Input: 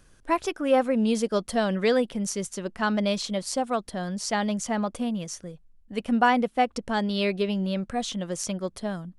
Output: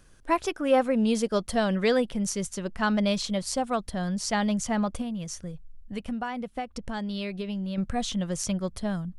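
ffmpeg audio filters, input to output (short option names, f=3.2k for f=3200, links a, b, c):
-filter_complex "[0:a]asubboost=boost=3.5:cutoff=160,asettb=1/sr,asplit=3[a][b][c];[a]atrim=end=5.014[d];[b]atrim=start=5.01:end=7.78,asetpts=PTS-STARTPTS,afade=t=in:d=0.004:c=qsin,afade=t=out:st=2.766:d=0.004:c=qsin,acompressor=threshold=-30dB:ratio=6[e];[c]atrim=start=7.776[f];[d][e]acrossfade=d=0.004:c1=hsin:c2=qsin[g];[g][f]acrossfade=d=0.004:c1=qsin:c2=hsin"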